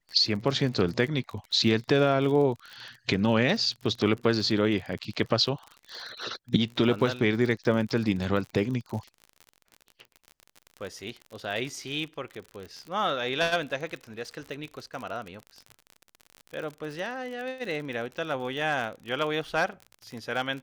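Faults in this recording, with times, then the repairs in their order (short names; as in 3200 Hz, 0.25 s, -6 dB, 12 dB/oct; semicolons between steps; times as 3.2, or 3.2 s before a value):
crackle 43/s -34 dBFS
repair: de-click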